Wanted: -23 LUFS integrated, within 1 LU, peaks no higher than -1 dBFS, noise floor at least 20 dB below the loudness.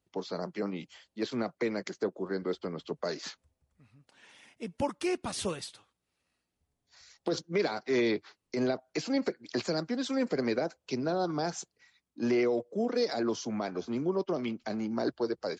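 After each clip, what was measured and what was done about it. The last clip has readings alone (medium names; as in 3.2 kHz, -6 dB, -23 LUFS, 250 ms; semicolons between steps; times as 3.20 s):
loudness -33.0 LUFS; peak level -17.5 dBFS; loudness target -23.0 LUFS
-> trim +10 dB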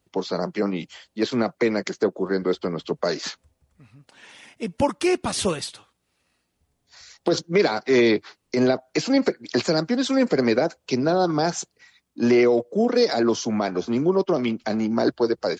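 loudness -23.0 LUFS; peak level -7.5 dBFS; noise floor -74 dBFS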